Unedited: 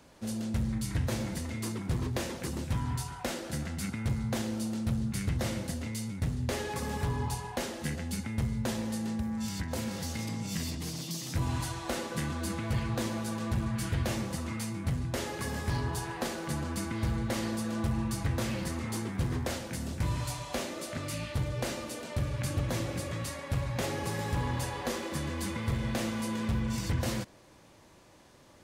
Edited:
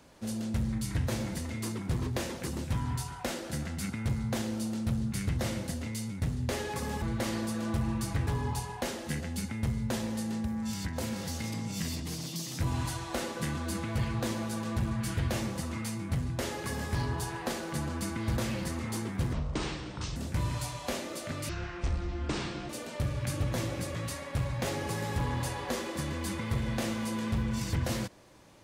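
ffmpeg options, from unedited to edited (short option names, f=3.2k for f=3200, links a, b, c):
-filter_complex "[0:a]asplit=8[a][b][c][d][e][f][g][h];[a]atrim=end=7.022[i];[b]atrim=start=17.118:end=18.372[j];[c]atrim=start=7.018:end=17.122[k];[d]atrim=start=18.368:end=19.334[l];[e]atrim=start=19.33:end=19.82,asetpts=PTS-STARTPTS,asetrate=26019,aresample=44100,atrim=end_sample=36625,asetpts=PTS-STARTPTS[m];[f]atrim=start=19.816:end=21.154[n];[g]atrim=start=21.15:end=21.86,asetpts=PTS-STARTPTS,asetrate=26019,aresample=44100,atrim=end_sample=53069,asetpts=PTS-STARTPTS[o];[h]atrim=start=21.856[p];[i][j]acrossfade=d=0.004:c1=hsin:c2=hsin[q];[q][k]acrossfade=d=0.004:c1=hsin:c2=hsin[r];[r][l]acrossfade=d=0.004:c1=hsin:c2=hsin[s];[s][m]acrossfade=d=0.004:c1=hsin:c2=hsin[t];[t][n]acrossfade=d=0.004:c1=hsin:c2=hsin[u];[u][o]acrossfade=d=0.004:c1=hsin:c2=hsin[v];[v][p]acrossfade=d=0.004:c1=hsin:c2=hsin"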